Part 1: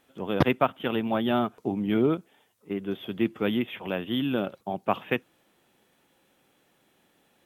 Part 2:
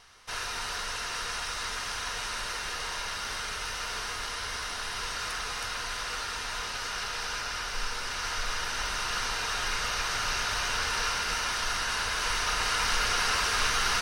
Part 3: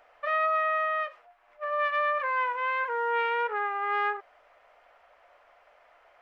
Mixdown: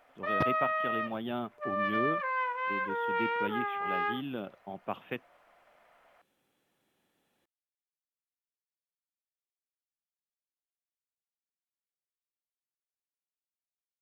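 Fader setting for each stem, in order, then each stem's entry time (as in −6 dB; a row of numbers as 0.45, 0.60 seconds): −10.5 dB, muted, −4.0 dB; 0.00 s, muted, 0.00 s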